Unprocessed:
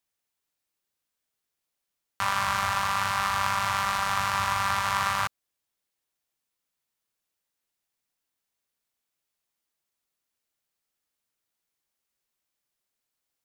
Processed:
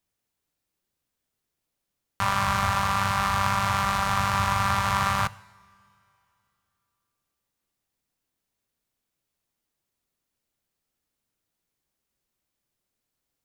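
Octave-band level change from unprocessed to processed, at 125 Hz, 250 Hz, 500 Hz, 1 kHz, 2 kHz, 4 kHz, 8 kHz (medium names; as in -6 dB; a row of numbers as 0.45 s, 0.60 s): +10.0 dB, +9.5 dB, +4.0 dB, +2.0 dB, +0.5 dB, 0.0 dB, 0.0 dB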